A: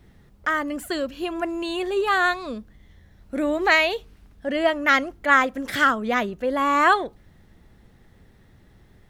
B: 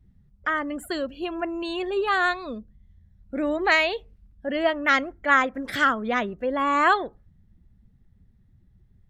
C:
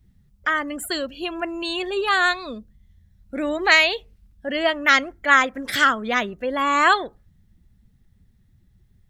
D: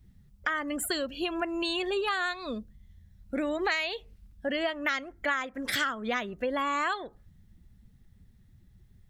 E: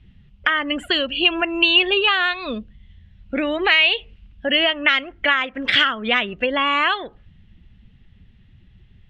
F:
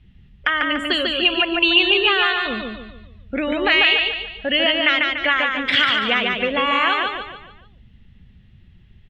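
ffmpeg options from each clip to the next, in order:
-af "afftdn=nr=19:nf=-44,volume=0.794"
-af "highshelf=f=2200:g=11.5"
-af "acompressor=threshold=0.0447:ratio=6"
-af "lowpass=f=2900:t=q:w=5,volume=2.37"
-af "aecho=1:1:145|290|435|580|725:0.708|0.297|0.125|0.0525|0.022,volume=0.891"

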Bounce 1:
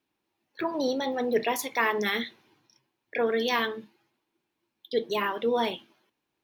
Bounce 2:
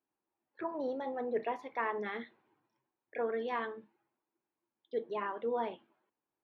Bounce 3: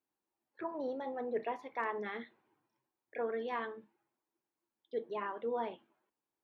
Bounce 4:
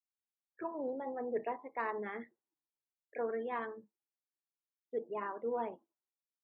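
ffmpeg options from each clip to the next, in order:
-af "lowpass=1300,lowshelf=f=320:g=-9.5,volume=0.562"
-af "asoftclip=type=hard:threshold=0.0794,volume=0.794"
-af "adynamicsmooth=sensitivity=4:basefreq=2600,afftdn=nr=25:nf=-55"

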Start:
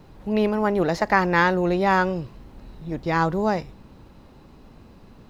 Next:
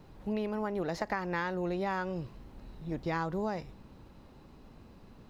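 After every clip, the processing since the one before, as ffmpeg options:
-af "acompressor=threshold=0.0708:ratio=12,volume=0.501"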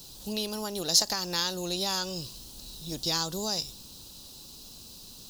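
-af "aexciter=amount=12:drive=9.7:freq=3400,volume=0.841"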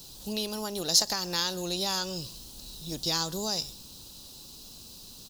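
-af "aecho=1:1:135:0.0631"

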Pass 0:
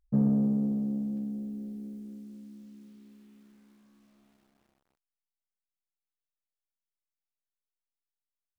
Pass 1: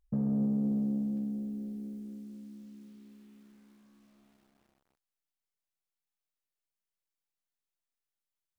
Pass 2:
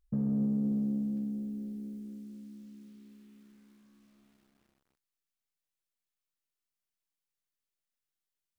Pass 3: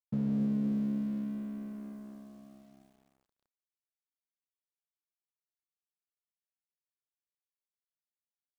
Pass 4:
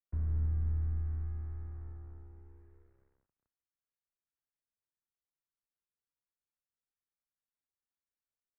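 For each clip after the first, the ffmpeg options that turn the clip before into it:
-af "alimiter=limit=0.0668:level=0:latency=1:release=60"
-af "equalizer=f=730:w=1.3:g=-5.5"
-af "aeval=exprs='sgn(val(0))*max(abs(val(0))-0.00266,0)':c=same"
-af "equalizer=f=125:t=o:w=1:g=-9,equalizer=f=250:t=o:w=1:g=6,equalizer=f=1000:t=o:w=1:g=-5,highpass=f=210:t=q:w=0.5412,highpass=f=210:t=q:w=1.307,lowpass=f=2100:t=q:w=0.5176,lowpass=f=2100:t=q:w=0.7071,lowpass=f=2100:t=q:w=1.932,afreqshift=-290"

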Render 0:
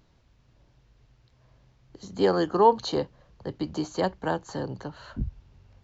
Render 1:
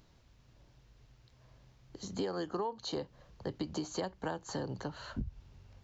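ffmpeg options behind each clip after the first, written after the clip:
-af "highshelf=f=4500:g=5.5,acompressor=threshold=0.0282:ratio=16,volume=0.841"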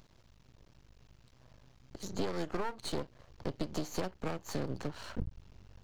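-af "aeval=exprs='max(val(0),0)':c=same,volume=1.68"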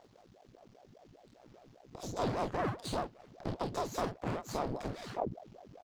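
-af "aecho=1:1:29|47:0.531|0.473,aeval=exprs='val(0)*sin(2*PI*420*n/s+420*0.75/5*sin(2*PI*5*n/s))':c=same"

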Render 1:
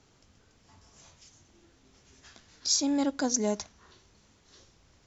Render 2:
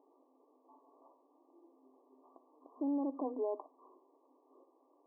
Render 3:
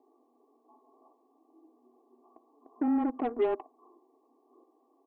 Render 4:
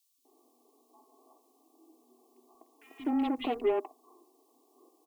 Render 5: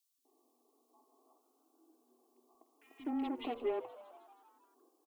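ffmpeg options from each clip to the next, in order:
-af "afftfilt=real='re*between(b*sr/4096,250,1200)':imag='im*between(b*sr/4096,250,1200)':win_size=4096:overlap=0.75,alimiter=level_in=1.58:limit=0.0631:level=0:latency=1:release=35,volume=0.631"
-af "aecho=1:1:2.6:0.74,afreqshift=-18,aeval=exprs='0.0631*(cos(1*acos(clip(val(0)/0.0631,-1,1)))-cos(1*PI/2))+0.00447*(cos(7*acos(clip(val(0)/0.0631,-1,1)))-cos(7*PI/2))':c=same,volume=1.88"
-filter_complex "[0:a]acrossover=split=170|2200[s0][s1][s2];[s0]adelay=180[s3];[s1]adelay=250[s4];[s3][s4][s2]amix=inputs=3:normalize=0,aexciter=amount=5:drive=6.3:freq=2300"
-filter_complex "[0:a]asplit=7[s0][s1][s2][s3][s4][s5][s6];[s1]adelay=158,afreqshift=96,volume=0.141[s7];[s2]adelay=316,afreqshift=192,volume=0.0871[s8];[s3]adelay=474,afreqshift=288,volume=0.0543[s9];[s4]adelay=632,afreqshift=384,volume=0.0335[s10];[s5]adelay=790,afreqshift=480,volume=0.0209[s11];[s6]adelay=948,afreqshift=576,volume=0.0129[s12];[s0][s7][s8][s9][s10][s11][s12]amix=inputs=7:normalize=0,volume=0.422"

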